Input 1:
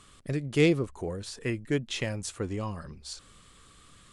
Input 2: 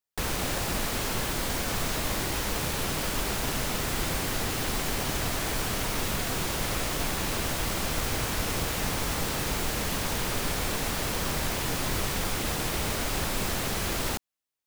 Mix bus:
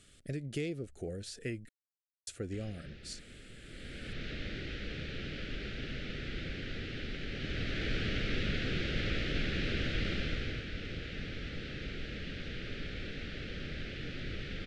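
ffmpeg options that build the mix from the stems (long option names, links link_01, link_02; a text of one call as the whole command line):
ffmpeg -i stem1.wav -i stem2.wav -filter_complex "[0:a]acompressor=threshold=-29dB:ratio=6,volume=-4.5dB,asplit=3[link_01][link_02][link_03];[link_01]atrim=end=1.69,asetpts=PTS-STARTPTS,afade=type=out:start_time=1.686:duration=0.004:curve=hsin[link_04];[link_02]atrim=start=1.69:end=2.27,asetpts=PTS-STARTPTS,volume=0[link_05];[link_03]atrim=start=2.27,asetpts=PTS-STARTPTS,afade=type=in:duration=0.004:curve=hsin[link_06];[link_04][link_05][link_06]concat=n=3:v=0:a=1[link_07];[1:a]lowpass=frequency=3700:width=0.5412,lowpass=frequency=3700:width=1.3066,equalizer=frequency=710:width_type=o:width=0.57:gain=-12.5,adelay=2350,volume=-1.5dB,afade=type=in:start_time=3.59:duration=0.71:silence=0.237137,afade=type=in:start_time=7.29:duration=0.64:silence=0.473151,afade=type=out:start_time=10.09:duration=0.57:silence=0.421697[link_08];[link_07][link_08]amix=inputs=2:normalize=0,asuperstop=centerf=1000:order=4:qfactor=1.3" out.wav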